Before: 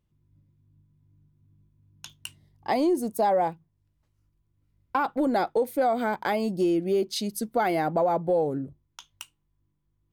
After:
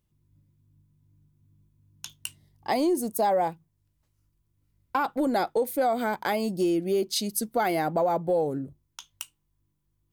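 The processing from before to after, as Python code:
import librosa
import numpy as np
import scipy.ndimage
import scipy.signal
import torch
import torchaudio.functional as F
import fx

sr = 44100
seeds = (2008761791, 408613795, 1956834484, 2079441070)

y = fx.high_shelf(x, sr, hz=5100.0, db=9.0)
y = F.gain(torch.from_numpy(y), -1.0).numpy()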